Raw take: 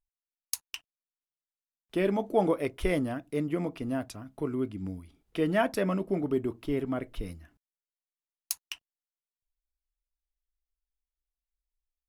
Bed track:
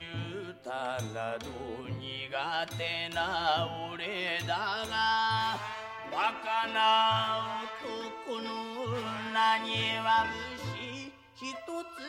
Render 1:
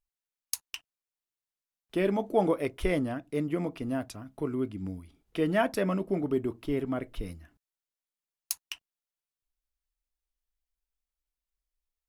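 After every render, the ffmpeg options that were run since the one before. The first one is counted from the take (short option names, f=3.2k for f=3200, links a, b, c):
-filter_complex "[0:a]asettb=1/sr,asplit=3[a][b][c];[a]atrim=end=2.854[d];[b]atrim=start=2.85:end=3.34,asetpts=PTS-STARTPTS,afade=t=in:d=0.004:c=qsin,afade=t=out:st=0.486:d=0.004:c=qsin,highshelf=f=9.5k:g=-6[e];[c]atrim=start=3.336[f];[d][e]acrossfade=d=0.004:c1=hsin:c2=qsin[g];[g][f]acrossfade=d=0.004:c1=qsin:c2=hsin"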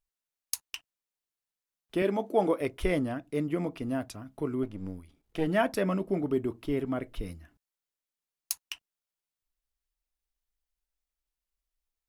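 -filter_complex "[0:a]asettb=1/sr,asplit=3[a][b][c];[a]atrim=end=2.024[d];[b]atrim=start=2.02:end=2.61,asetpts=PTS-STARTPTS,afade=t=in:d=0.004:c=qsin,afade=t=out:st=0.586:d=0.004:c=qsin,highpass=200[e];[c]atrim=start=2.606[f];[d][e]acrossfade=d=0.004:c1=hsin:c2=qsin[g];[g][f]acrossfade=d=0.004:c1=qsin:c2=hsin,asettb=1/sr,asplit=3[h][i][j];[h]atrim=end=4.634[k];[i]atrim=start=4.63:end=5.47,asetpts=PTS-STARTPTS,afade=t=in:d=0.004:c=qsin,afade=t=out:st=0.836:d=0.004:c=qsin,aeval=exprs='if(lt(val(0),0),0.447*val(0),val(0))':c=same[l];[j]atrim=start=5.466[m];[k][l]acrossfade=d=0.004:c1=hsin:c2=qsin[n];[n][m]acrossfade=d=0.004:c1=qsin:c2=hsin"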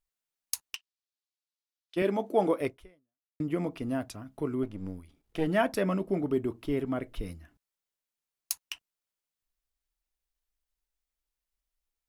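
-filter_complex "[0:a]asplit=3[a][b][c];[a]afade=t=out:st=0.75:d=0.02[d];[b]bandpass=f=4.3k:t=q:w=1.5,afade=t=in:st=0.75:d=0.02,afade=t=out:st=1.96:d=0.02[e];[c]afade=t=in:st=1.96:d=0.02[f];[d][e][f]amix=inputs=3:normalize=0,asplit=2[g][h];[g]atrim=end=3.4,asetpts=PTS-STARTPTS,afade=t=out:st=2.68:d=0.72:c=exp[i];[h]atrim=start=3.4,asetpts=PTS-STARTPTS,afade=t=in:d=0.004:c=hsin[j];[i][j]concat=n=2:v=0:a=1"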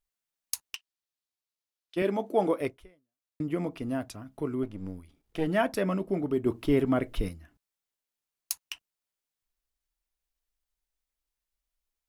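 -filter_complex "[0:a]asettb=1/sr,asplit=3[a][b][c];[a]atrim=end=6.464[d];[b]atrim=start=6.46:end=7.29,asetpts=PTS-STARTPTS,afade=t=in:d=0.004:c=qsin,afade=t=out:st=0.826:d=0.004:c=qsin,acontrast=55[e];[c]atrim=start=7.286[f];[d][e]acrossfade=d=0.004:c1=hsin:c2=qsin[g];[g][f]acrossfade=d=0.004:c1=qsin:c2=hsin"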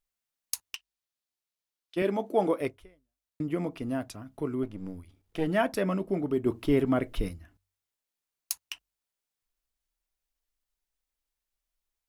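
-af "bandreject=f=47.52:t=h:w=4,bandreject=f=95.04:t=h:w=4"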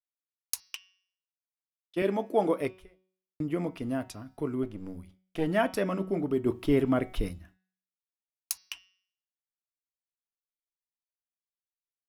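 -af "agate=range=-33dB:threshold=-49dB:ratio=3:detection=peak,bandreject=f=186.7:t=h:w=4,bandreject=f=373.4:t=h:w=4,bandreject=f=560.1:t=h:w=4,bandreject=f=746.8:t=h:w=4,bandreject=f=933.5:t=h:w=4,bandreject=f=1.1202k:t=h:w=4,bandreject=f=1.3069k:t=h:w=4,bandreject=f=1.4936k:t=h:w=4,bandreject=f=1.6803k:t=h:w=4,bandreject=f=1.867k:t=h:w=4,bandreject=f=2.0537k:t=h:w=4,bandreject=f=2.2404k:t=h:w=4,bandreject=f=2.4271k:t=h:w=4,bandreject=f=2.6138k:t=h:w=4,bandreject=f=2.8005k:t=h:w=4,bandreject=f=2.9872k:t=h:w=4,bandreject=f=3.1739k:t=h:w=4,bandreject=f=3.3606k:t=h:w=4,bandreject=f=3.5473k:t=h:w=4,bandreject=f=3.734k:t=h:w=4,bandreject=f=3.9207k:t=h:w=4,bandreject=f=4.1074k:t=h:w=4,bandreject=f=4.2941k:t=h:w=4,bandreject=f=4.4808k:t=h:w=4,bandreject=f=4.6675k:t=h:w=4,bandreject=f=4.8542k:t=h:w=4,bandreject=f=5.0409k:t=h:w=4,bandreject=f=5.2276k:t=h:w=4,bandreject=f=5.4143k:t=h:w=4,bandreject=f=5.601k:t=h:w=4,bandreject=f=5.7877k:t=h:w=4,bandreject=f=5.9744k:t=h:w=4"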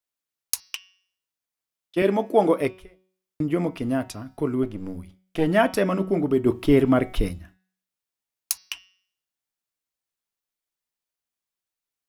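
-af "volume=7dB"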